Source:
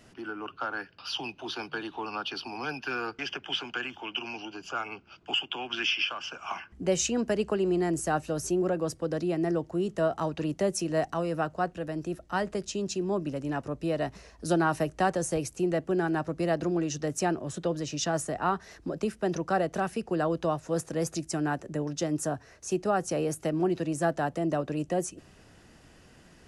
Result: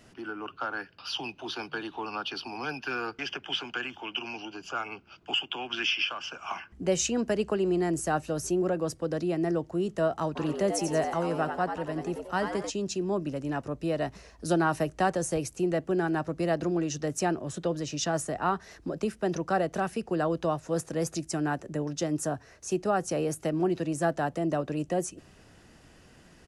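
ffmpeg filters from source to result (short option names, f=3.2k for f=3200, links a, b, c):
-filter_complex "[0:a]asplit=3[a][b][c];[a]afade=t=out:st=10.35:d=0.02[d];[b]asplit=7[e][f][g][h][i][j][k];[f]adelay=90,afreqshift=100,volume=-7dB[l];[g]adelay=180,afreqshift=200,volume=-13.4dB[m];[h]adelay=270,afreqshift=300,volume=-19.8dB[n];[i]adelay=360,afreqshift=400,volume=-26.1dB[o];[j]adelay=450,afreqshift=500,volume=-32.5dB[p];[k]adelay=540,afreqshift=600,volume=-38.9dB[q];[e][l][m][n][o][p][q]amix=inputs=7:normalize=0,afade=t=in:st=10.35:d=0.02,afade=t=out:st=12.69:d=0.02[r];[c]afade=t=in:st=12.69:d=0.02[s];[d][r][s]amix=inputs=3:normalize=0"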